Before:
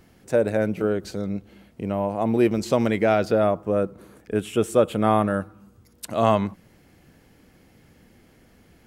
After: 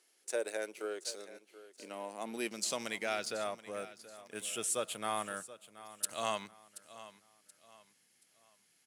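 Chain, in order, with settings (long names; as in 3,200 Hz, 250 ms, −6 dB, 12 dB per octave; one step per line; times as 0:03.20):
elliptic low-pass filter 11,000 Hz, stop band 40 dB
first difference
leveller curve on the samples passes 1
high-pass filter sweep 370 Hz → 130 Hz, 0:01.35–0:03.15
on a send: repeating echo 728 ms, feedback 34%, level −16 dB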